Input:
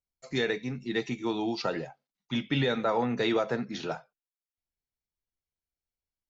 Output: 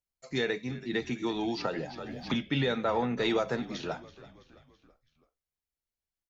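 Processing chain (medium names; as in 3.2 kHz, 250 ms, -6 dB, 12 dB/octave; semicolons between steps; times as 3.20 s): 3.25–3.74 s: treble shelf 6.6 kHz +10.5 dB; frequency-shifting echo 330 ms, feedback 52%, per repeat -50 Hz, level -18 dB; 0.93–2.34 s: three bands compressed up and down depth 100%; trim -1.5 dB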